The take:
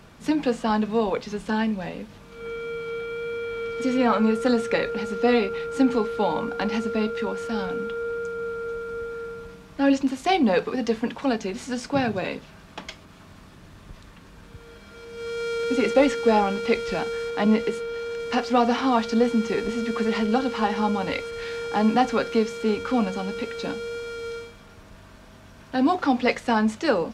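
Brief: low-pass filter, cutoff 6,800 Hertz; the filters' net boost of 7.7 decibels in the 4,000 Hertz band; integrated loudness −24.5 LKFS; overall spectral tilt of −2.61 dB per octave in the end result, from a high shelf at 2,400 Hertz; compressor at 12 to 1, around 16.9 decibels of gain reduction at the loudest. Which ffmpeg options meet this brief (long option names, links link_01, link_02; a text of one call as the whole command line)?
ffmpeg -i in.wav -af "lowpass=6800,highshelf=frequency=2400:gain=6,equalizer=frequency=4000:width_type=o:gain=5,acompressor=threshold=-31dB:ratio=12,volume=10.5dB" out.wav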